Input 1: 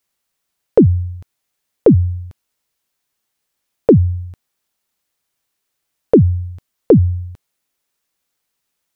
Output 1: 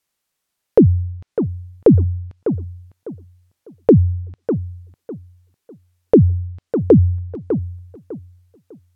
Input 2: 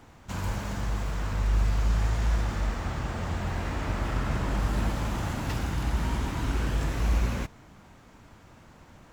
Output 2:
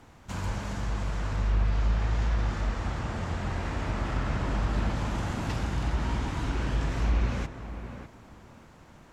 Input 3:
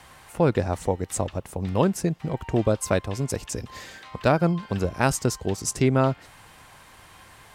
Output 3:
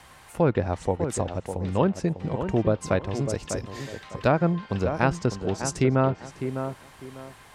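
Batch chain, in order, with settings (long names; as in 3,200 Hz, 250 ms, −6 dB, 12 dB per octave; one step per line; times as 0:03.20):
treble cut that deepens with the level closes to 2,700 Hz, closed at −17 dBFS
on a send: tape delay 601 ms, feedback 30%, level −7 dB, low-pass 1,500 Hz
on the sum: level −1 dB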